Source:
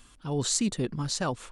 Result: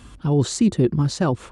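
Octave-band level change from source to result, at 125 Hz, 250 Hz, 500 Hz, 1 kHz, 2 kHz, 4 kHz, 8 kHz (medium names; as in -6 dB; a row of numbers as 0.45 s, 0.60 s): +12.5 dB, +11.0 dB, +10.0 dB, +5.5 dB, +3.0 dB, 0.0 dB, -2.0 dB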